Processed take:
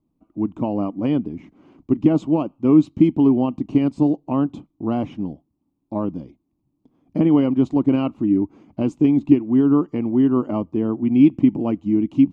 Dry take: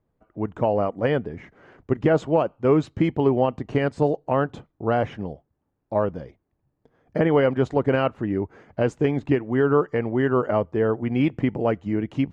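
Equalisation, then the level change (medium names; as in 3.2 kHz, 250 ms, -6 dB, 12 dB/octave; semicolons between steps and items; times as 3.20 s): FFT filter 110 Hz 0 dB, 300 Hz +14 dB, 450 Hz -6 dB, 1.1 kHz +1 dB, 1.7 kHz -17 dB, 2.4 kHz 0 dB; -3.0 dB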